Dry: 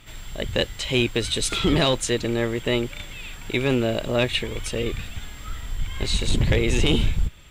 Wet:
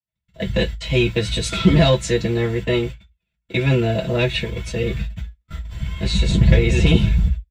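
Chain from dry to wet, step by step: gate -29 dBFS, range -54 dB; comb 5.9 ms, depth 60%; reverberation RT60 0.10 s, pre-delay 3 ms, DRR -5 dB; trim -12 dB

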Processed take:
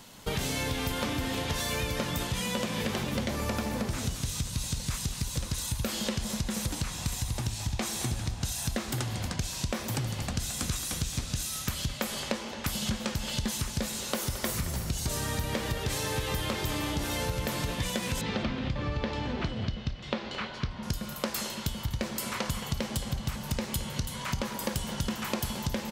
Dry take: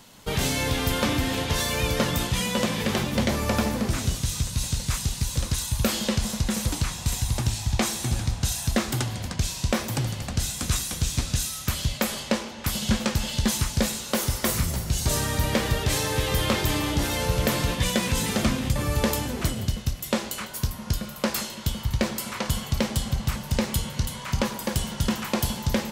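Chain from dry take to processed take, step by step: 18.21–20.83 s: low-pass 4.3 kHz 24 dB/octave; compression, threshold -28 dBFS, peak gain reduction 11 dB; speakerphone echo 220 ms, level -10 dB

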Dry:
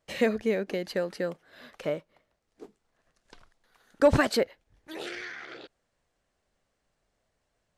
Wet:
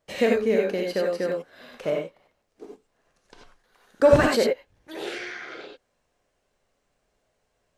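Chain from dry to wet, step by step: peaking EQ 510 Hz +3.5 dB 1.5 oct; gated-style reverb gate 110 ms rising, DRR -1 dB

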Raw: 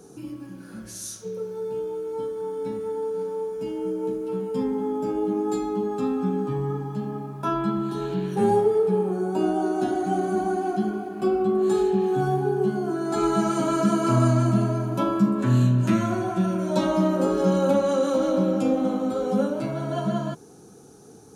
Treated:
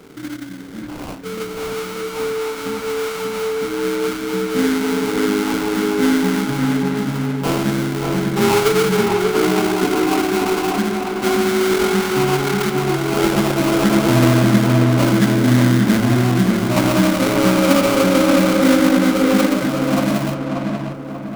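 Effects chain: peaking EQ 270 Hz +6 dB 0.3 oct; sample-rate reducer 1.8 kHz, jitter 20%; filtered feedback delay 588 ms, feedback 48%, low-pass 2.2 kHz, level -3 dB; trim +4 dB

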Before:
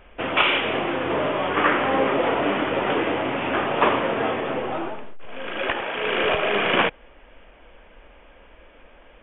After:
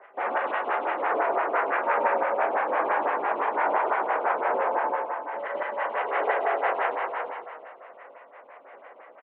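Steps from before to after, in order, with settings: dynamic bell 800 Hz, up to +5 dB, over -39 dBFS, Q 2.6; in parallel at 0 dB: compression 16:1, threshold -28 dBFS, peak gain reduction 17 dB; on the sum: short-mantissa float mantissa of 4-bit; trance gate "x.xxx.x..x." 194 bpm -60 dB; pitch shift +4.5 st; saturation -21 dBFS, distortion -9 dB; delay 354 ms -6.5 dB; reverberation RT60 1.9 s, pre-delay 22 ms, DRR -2.5 dB; mistuned SSB -120 Hz 580–2300 Hz; lamp-driven phase shifter 5.9 Hz

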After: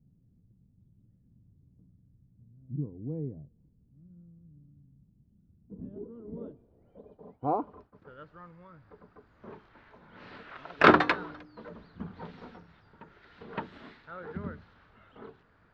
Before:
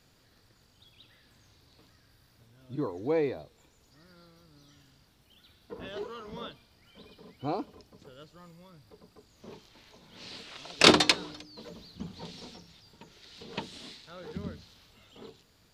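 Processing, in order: low-pass sweep 180 Hz -> 1.5 kHz, 5.62–8.05 s; 7.01–8.21 s: expander -49 dBFS

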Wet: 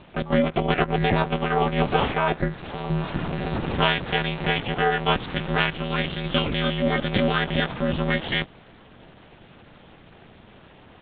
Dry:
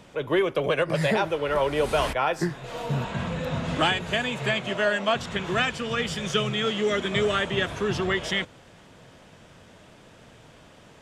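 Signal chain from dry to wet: monotone LPC vocoder at 8 kHz 200 Hz; ring modulator 160 Hz; trim +5 dB

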